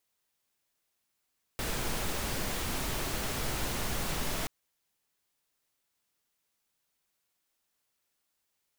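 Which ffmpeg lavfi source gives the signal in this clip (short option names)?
-f lavfi -i "anoisesrc=c=pink:a=0.115:d=2.88:r=44100:seed=1"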